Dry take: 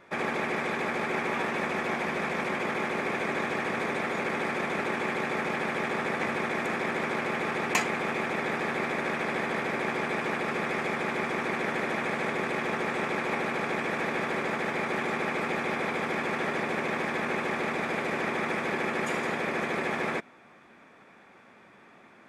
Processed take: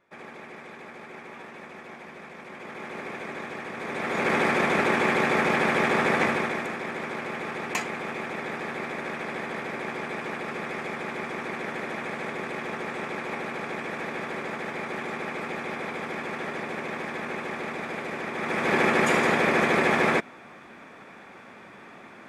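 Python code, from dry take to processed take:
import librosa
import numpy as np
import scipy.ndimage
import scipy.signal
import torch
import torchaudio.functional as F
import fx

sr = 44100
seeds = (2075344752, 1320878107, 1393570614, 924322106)

y = fx.gain(x, sr, db=fx.line((2.42, -13.0), (2.98, -6.0), (3.75, -6.0), (4.32, 7.0), (6.21, 7.0), (6.75, -3.0), (18.32, -3.0), (18.77, 8.0)))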